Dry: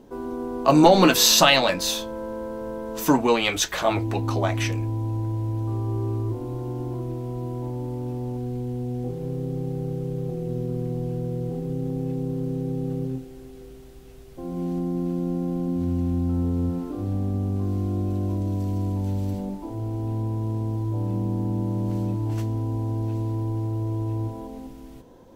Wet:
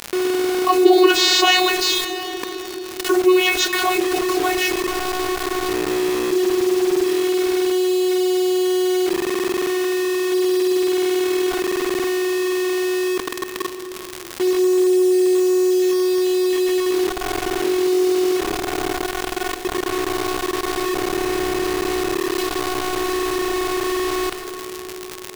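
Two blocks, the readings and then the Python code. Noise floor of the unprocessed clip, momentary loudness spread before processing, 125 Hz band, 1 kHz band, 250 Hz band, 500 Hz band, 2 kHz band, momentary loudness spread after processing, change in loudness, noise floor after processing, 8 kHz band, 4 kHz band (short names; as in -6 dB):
-43 dBFS, 12 LU, under -15 dB, +4.5 dB, +5.5 dB, +10.0 dB, +8.0 dB, 9 LU, +5.5 dB, -32 dBFS, +3.0 dB, +5.5 dB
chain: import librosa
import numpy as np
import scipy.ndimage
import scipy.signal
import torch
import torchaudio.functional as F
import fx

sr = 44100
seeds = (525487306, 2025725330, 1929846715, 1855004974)

p1 = fx.tracing_dist(x, sr, depth_ms=0.13)
p2 = fx.env_lowpass(p1, sr, base_hz=1600.0, full_db=-18.5)
p3 = fx.curve_eq(p2, sr, hz=(130.0, 240.0, 480.0, 2700.0, 6300.0), db=(0, 14, -6, 9, 8))
p4 = fx.vocoder(p3, sr, bands=32, carrier='saw', carrier_hz=367.0)
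p5 = fx.comb_fb(p4, sr, f0_hz=340.0, decay_s=0.37, harmonics='all', damping=0.0, mix_pct=60)
p6 = fx.quant_dither(p5, sr, seeds[0], bits=6, dither='none')
p7 = fx.dmg_crackle(p6, sr, seeds[1], per_s=170.0, level_db=-40.0)
p8 = p7 + fx.echo_banded(p7, sr, ms=212, feedback_pct=79, hz=360.0, wet_db=-23.5, dry=0)
p9 = fx.rev_plate(p8, sr, seeds[2], rt60_s=3.2, hf_ratio=0.85, predelay_ms=0, drr_db=15.5)
y = fx.env_flatten(p9, sr, amount_pct=50)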